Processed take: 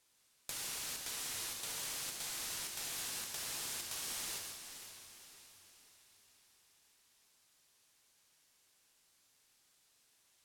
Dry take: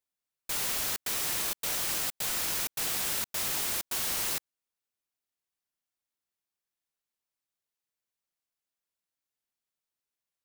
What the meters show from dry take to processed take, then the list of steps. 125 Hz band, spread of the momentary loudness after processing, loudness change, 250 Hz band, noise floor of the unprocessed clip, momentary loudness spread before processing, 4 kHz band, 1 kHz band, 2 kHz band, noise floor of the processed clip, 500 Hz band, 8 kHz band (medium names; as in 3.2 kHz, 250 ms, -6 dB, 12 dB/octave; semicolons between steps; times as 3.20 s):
-11.0 dB, 15 LU, -11.0 dB, -11.0 dB, under -85 dBFS, 3 LU, -7.5 dB, -10.5 dB, -9.5 dB, -73 dBFS, -11.5 dB, -7.5 dB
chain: Bessel low-pass 9.4 kHz, order 2; treble shelf 2.9 kHz +7 dB; peak limiter -34 dBFS, peak gain reduction 16 dB; compression 6:1, threshold -57 dBFS, peak gain reduction 15.5 dB; on a send: echo that smears into a reverb 461 ms, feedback 53%, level -12 dB; on the sum: gated-style reverb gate 220 ms flat, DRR 1 dB; modulated delay 521 ms, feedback 33%, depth 147 cents, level -12.5 dB; trim +13.5 dB